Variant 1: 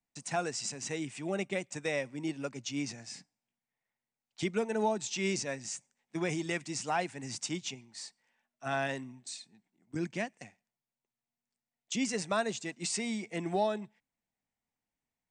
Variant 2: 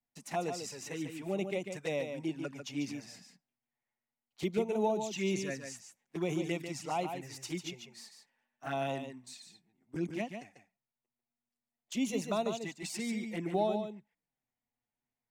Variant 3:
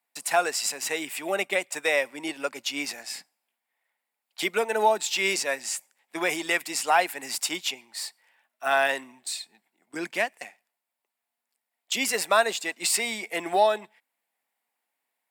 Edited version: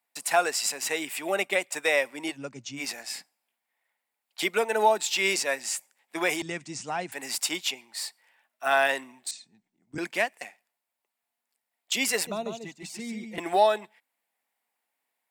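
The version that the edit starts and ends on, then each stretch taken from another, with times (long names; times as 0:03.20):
3
0:02.34–0:02.79: punch in from 1, crossfade 0.10 s
0:06.42–0:07.12: punch in from 1
0:09.31–0:09.98: punch in from 1
0:12.27–0:13.38: punch in from 2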